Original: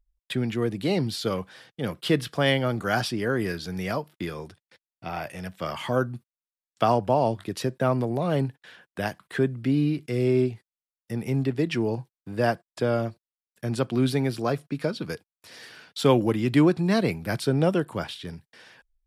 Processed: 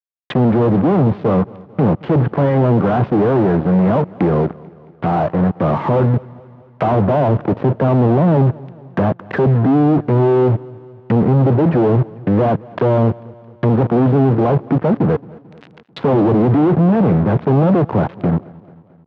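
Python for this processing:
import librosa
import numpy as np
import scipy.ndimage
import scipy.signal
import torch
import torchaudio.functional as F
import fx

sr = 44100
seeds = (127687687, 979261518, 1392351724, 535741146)

y = fx.wiener(x, sr, points=15)
y = fx.fuzz(y, sr, gain_db=45.0, gate_db=-45.0)
y = fx.env_lowpass_down(y, sr, base_hz=980.0, full_db=-16.5)
y = fx.high_shelf(y, sr, hz=2300.0, db=-11.0)
y = np.sign(y) * np.maximum(np.abs(y) - 10.0 ** (-37.5 / 20.0), 0.0)
y = scipy.signal.sosfilt(scipy.signal.cheby1(2, 1.0, [120.0, 3000.0], 'bandpass', fs=sr, output='sos'), y)
y = fx.echo_feedback(y, sr, ms=221, feedback_pct=57, wet_db=-22.5)
y = y * 10.0 ** (4.0 / 20.0)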